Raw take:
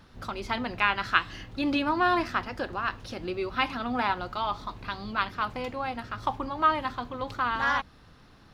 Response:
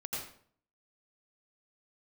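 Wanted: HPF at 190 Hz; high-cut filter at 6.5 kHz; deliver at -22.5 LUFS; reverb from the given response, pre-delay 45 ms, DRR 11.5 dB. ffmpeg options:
-filter_complex "[0:a]highpass=190,lowpass=6500,asplit=2[s0][s1];[1:a]atrim=start_sample=2205,adelay=45[s2];[s1][s2]afir=irnorm=-1:irlink=0,volume=0.211[s3];[s0][s3]amix=inputs=2:normalize=0,volume=2.11"

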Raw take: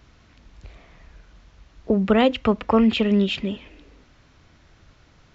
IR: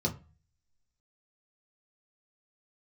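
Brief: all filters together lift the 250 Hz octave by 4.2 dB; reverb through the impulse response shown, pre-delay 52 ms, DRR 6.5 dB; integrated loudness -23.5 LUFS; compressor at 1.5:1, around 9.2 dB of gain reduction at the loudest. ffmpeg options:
-filter_complex "[0:a]equalizer=f=250:t=o:g=5,acompressor=threshold=0.0158:ratio=1.5,asplit=2[s0][s1];[1:a]atrim=start_sample=2205,adelay=52[s2];[s1][s2]afir=irnorm=-1:irlink=0,volume=0.237[s3];[s0][s3]amix=inputs=2:normalize=0,volume=0.794"

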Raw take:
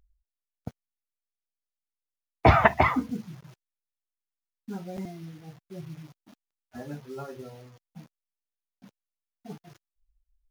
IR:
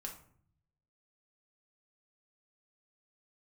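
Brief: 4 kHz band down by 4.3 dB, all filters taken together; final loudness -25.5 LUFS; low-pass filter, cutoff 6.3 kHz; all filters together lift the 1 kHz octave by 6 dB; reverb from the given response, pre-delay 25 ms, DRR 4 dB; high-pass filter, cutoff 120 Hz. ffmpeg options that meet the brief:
-filter_complex "[0:a]highpass=120,lowpass=6300,equalizer=f=1000:t=o:g=8,equalizer=f=4000:t=o:g=-6,asplit=2[s0][s1];[1:a]atrim=start_sample=2205,adelay=25[s2];[s1][s2]afir=irnorm=-1:irlink=0,volume=0.841[s3];[s0][s3]amix=inputs=2:normalize=0,volume=0.447"

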